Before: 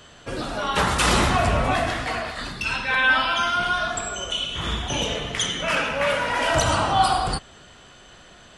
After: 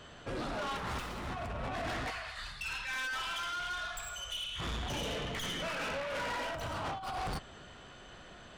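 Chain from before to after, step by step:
stylus tracing distortion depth 0.071 ms
0:02.10–0:04.60: guitar amp tone stack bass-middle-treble 10-0-10
compressor whose output falls as the input rises −24 dBFS, ratio −0.5
high-shelf EQ 4,400 Hz −9.5 dB
soft clipping −29 dBFS, distortion −8 dB
level −5 dB

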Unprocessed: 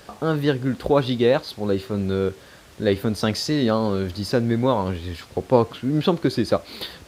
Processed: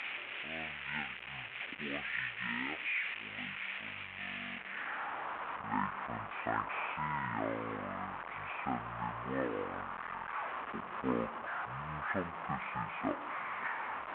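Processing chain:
linear delta modulator 32 kbit/s, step −26 dBFS
wrong playback speed 15 ips tape played at 7.5 ips
band-pass filter sweep 2,500 Hz → 1,100 Hz, 0:04.49–0:05.17

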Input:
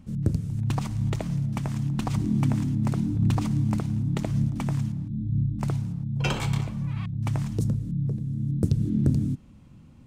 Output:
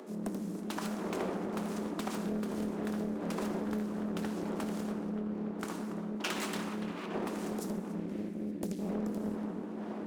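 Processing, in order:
lower of the sound and its delayed copy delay 0.76 ms
wind on the microphone 430 Hz −36 dBFS
upward compression, threshold −43 dBFS
Chebyshev high-pass filter 180 Hz, order 10
tape delay 287 ms, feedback 80%, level −11 dB, low-pass 2,700 Hz
gain on a spectral selection 0:07.98–0:08.80, 420–1,600 Hz −13 dB
convolution reverb RT60 1.4 s, pre-delay 4 ms, DRR 2 dB
downward compressor, threshold −28 dBFS, peak gain reduction 9 dB
high-shelf EQ 8,000 Hz +10.5 dB
highs frequency-modulated by the lows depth 0.59 ms
level −3.5 dB

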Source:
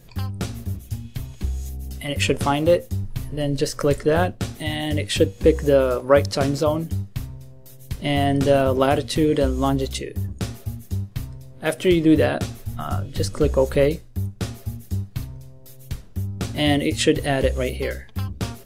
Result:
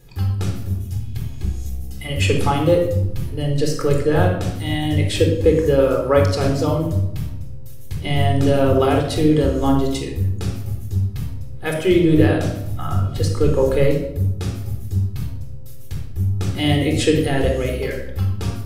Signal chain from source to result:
rectangular room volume 2,300 cubic metres, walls furnished, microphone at 4 metres
level −3 dB

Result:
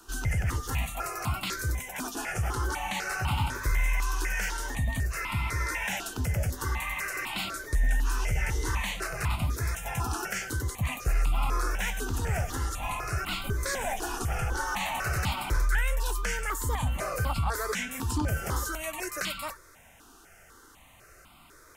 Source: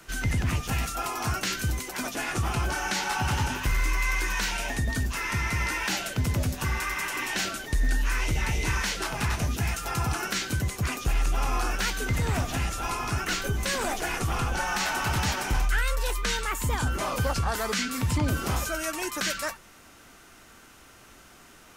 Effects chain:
step-sequenced phaser 4 Hz 570–1,700 Hz

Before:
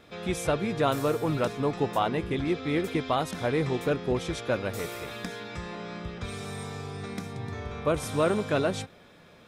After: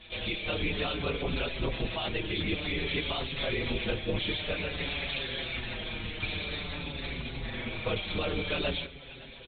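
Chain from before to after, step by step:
high shelf with overshoot 1,900 Hz +11.5 dB, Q 1.5
brickwall limiter −19.5 dBFS, peak gain reduction 10 dB
repeating echo 567 ms, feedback 53%, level −18.5 dB
linear-prediction vocoder at 8 kHz whisper
barber-pole flanger 5.8 ms −0.52 Hz
level +1.5 dB

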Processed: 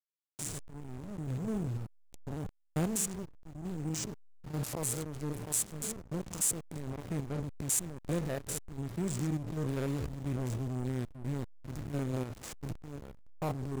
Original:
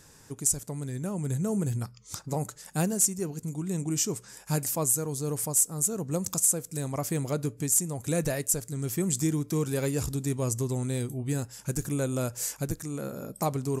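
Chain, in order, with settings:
spectrum averaged block by block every 100 ms
slack as between gear wheels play −25.5 dBFS
level −2 dB

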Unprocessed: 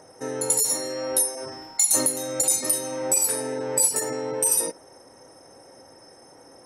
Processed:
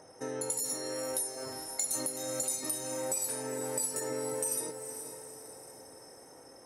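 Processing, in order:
downward compressor 2.5 to 1, threshold −29 dBFS, peak gain reduction 9 dB
on a send: feedback delay with all-pass diffusion 467 ms, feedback 48%, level −9 dB
on the sum: level −5 dB

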